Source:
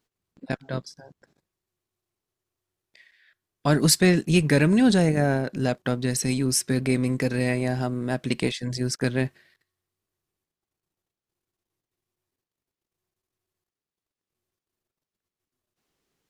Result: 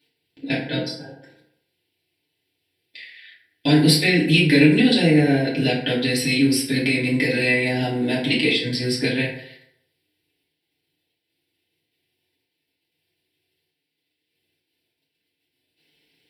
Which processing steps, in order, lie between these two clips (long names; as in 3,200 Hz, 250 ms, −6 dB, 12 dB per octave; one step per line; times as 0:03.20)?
meter weighting curve D
downward compressor 2 to 1, threshold −27 dBFS, peak gain reduction 11 dB
phaser with its sweep stopped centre 2,900 Hz, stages 4
feedback delay network reverb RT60 0.75 s, low-frequency decay 0.9×, high-frequency decay 0.5×, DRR −8 dB
level +2 dB